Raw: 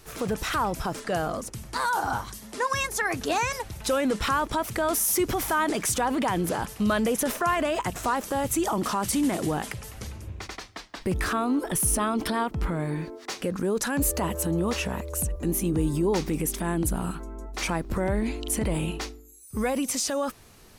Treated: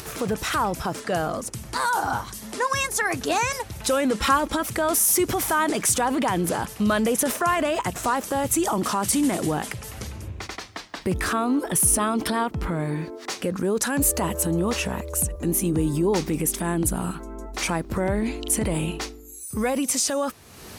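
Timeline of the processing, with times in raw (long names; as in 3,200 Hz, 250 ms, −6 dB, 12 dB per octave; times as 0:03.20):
0:04.18–0:04.68: comb filter 3.7 ms
whole clip: high-pass filter 60 Hz; upward compression, threshold −32 dBFS; dynamic equaliser 8,800 Hz, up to +4 dB, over −42 dBFS, Q 1.2; level +2.5 dB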